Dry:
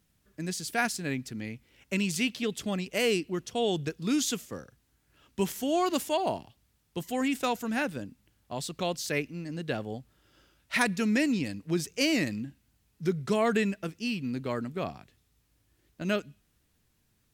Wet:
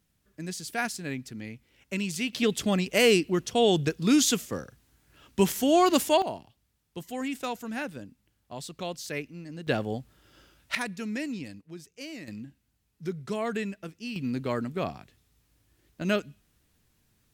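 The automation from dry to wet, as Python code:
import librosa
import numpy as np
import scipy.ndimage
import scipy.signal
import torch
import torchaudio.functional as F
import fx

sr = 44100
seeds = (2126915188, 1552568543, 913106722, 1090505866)

y = fx.gain(x, sr, db=fx.steps((0.0, -2.0), (2.33, 6.0), (6.22, -4.0), (9.67, 5.0), (10.75, -7.0), (11.61, -14.5), (12.28, -5.0), (14.16, 2.5)))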